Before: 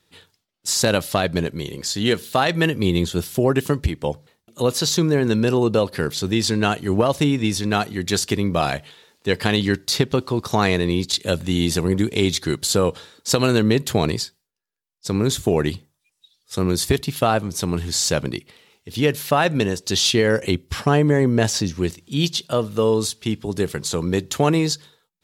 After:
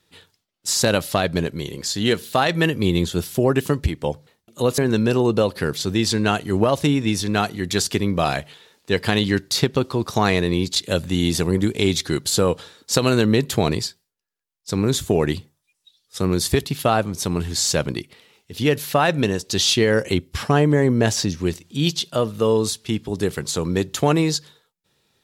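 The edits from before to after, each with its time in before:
4.78–5.15 s: delete

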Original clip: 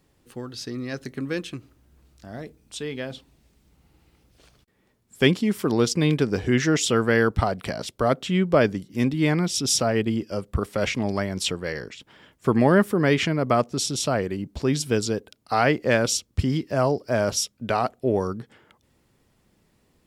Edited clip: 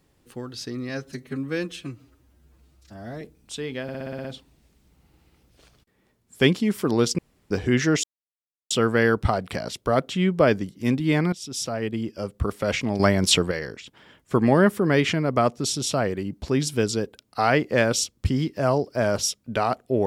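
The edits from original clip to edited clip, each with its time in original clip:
0.89–2.44 s: stretch 1.5×
3.05 s: stutter 0.06 s, 8 plays
5.99–6.31 s: room tone
6.84 s: insert silence 0.67 s
9.46–10.62 s: fade in, from -13.5 dB
11.13–11.65 s: gain +7.5 dB

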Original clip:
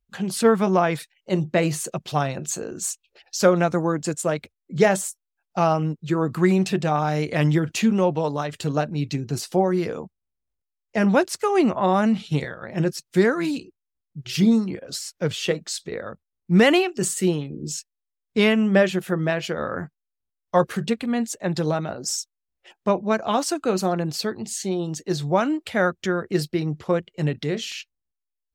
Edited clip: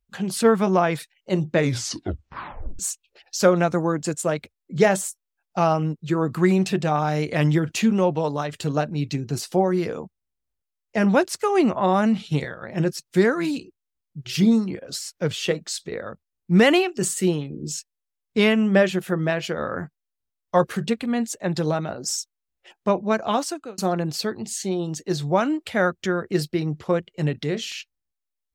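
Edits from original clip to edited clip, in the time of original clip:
1.50 s: tape stop 1.29 s
23.33–23.78 s: fade out

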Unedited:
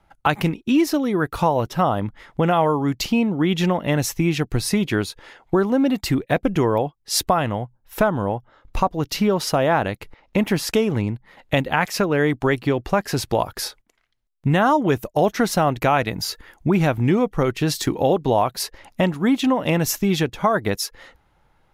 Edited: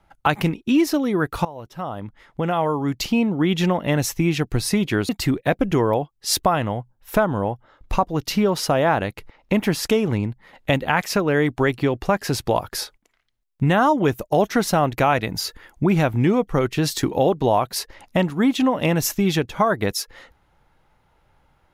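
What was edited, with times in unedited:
1.45–3.23 s: fade in linear, from -19.5 dB
5.09–5.93 s: delete

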